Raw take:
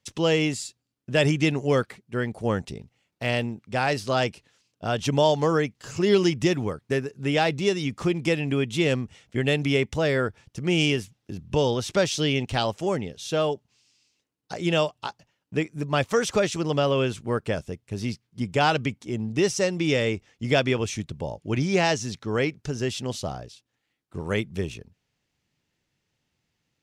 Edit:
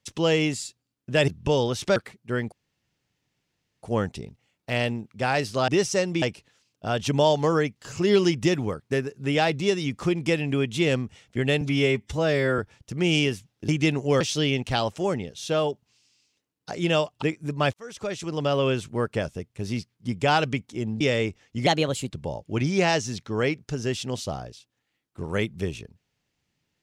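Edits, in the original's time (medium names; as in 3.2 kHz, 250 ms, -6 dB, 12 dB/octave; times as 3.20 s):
1.28–1.80 s: swap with 11.35–12.03 s
2.36 s: insert room tone 1.31 s
9.60–10.25 s: stretch 1.5×
15.05–15.55 s: delete
16.06–16.95 s: fade in
19.33–19.87 s: move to 4.21 s
20.53–21.07 s: speed 122%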